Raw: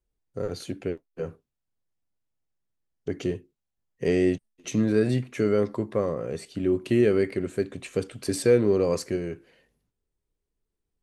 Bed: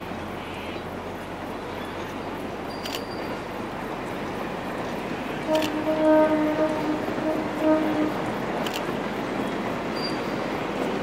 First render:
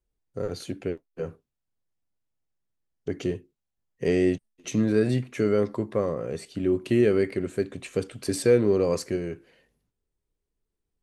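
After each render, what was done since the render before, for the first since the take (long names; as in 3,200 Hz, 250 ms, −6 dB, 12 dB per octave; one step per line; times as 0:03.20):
no processing that can be heard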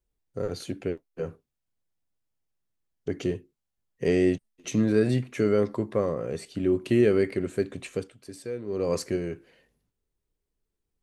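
0:07.85–0:08.97: duck −15 dB, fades 0.31 s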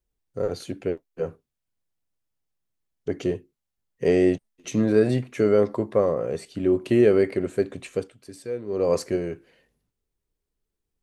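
dynamic equaliser 660 Hz, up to +7 dB, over −37 dBFS, Q 0.84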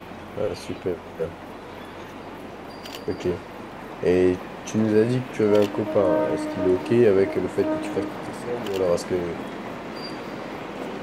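mix in bed −5.5 dB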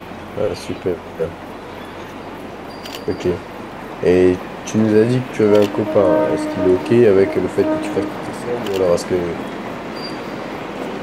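level +6.5 dB
brickwall limiter −2 dBFS, peak gain reduction 1.5 dB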